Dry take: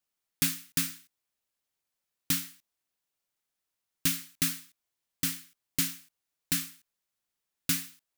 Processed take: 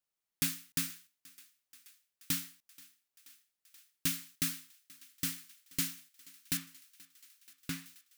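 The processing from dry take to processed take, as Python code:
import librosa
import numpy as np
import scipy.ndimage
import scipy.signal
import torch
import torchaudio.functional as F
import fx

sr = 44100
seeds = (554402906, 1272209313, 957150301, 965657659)

y = fx.high_shelf(x, sr, hz=3800.0, db=-12.0, at=(6.57, 7.86))
y = fx.echo_thinned(y, sr, ms=480, feedback_pct=81, hz=550.0, wet_db=-22.5)
y = F.gain(torch.from_numpy(y), -5.0).numpy()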